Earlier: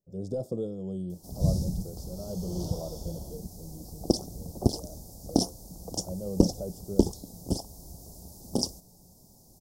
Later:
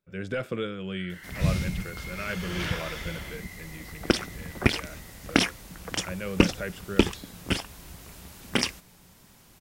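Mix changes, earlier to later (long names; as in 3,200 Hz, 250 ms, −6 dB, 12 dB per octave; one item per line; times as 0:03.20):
first sound +5.5 dB
master: remove Chebyshev band-stop filter 760–5,100 Hz, order 3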